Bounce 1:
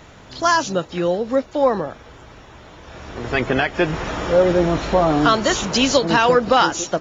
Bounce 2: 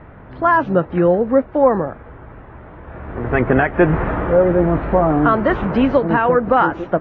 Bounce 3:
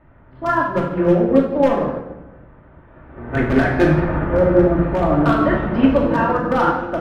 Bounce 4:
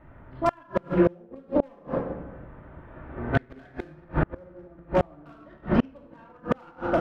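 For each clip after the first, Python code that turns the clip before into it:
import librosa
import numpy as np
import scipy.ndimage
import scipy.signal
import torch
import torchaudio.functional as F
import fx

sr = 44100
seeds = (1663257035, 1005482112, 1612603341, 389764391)

y1 = scipy.signal.sosfilt(scipy.signal.butter(4, 1900.0, 'lowpass', fs=sr, output='sos'), x)
y1 = fx.low_shelf(y1, sr, hz=260.0, db=4.5)
y1 = fx.rider(y1, sr, range_db=10, speed_s=0.5)
y1 = y1 * 10.0 ** (2.0 / 20.0)
y2 = 10.0 ** (-5.0 / 20.0) * (np.abs((y1 / 10.0 ** (-5.0 / 20.0) + 3.0) % 4.0 - 2.0) - 1.0)
y2 = fx.room_shoebox(y2, sr, seeds[0], volume_m3=960.0, walls='mixed', distance_m=2.6)
y2 = fx.upward_expand(y2, sr, threshold_db=-24.0, expansion=1.5)
y2 = y2 * 10.0 ** (-5.0 / 20.0)
y3 = fx.tracing_dist(y2, sr, depth_ms=0.075)
y3 = fx.gate_flip(y3, sr, shuts_db=-9.0, range_db=-33)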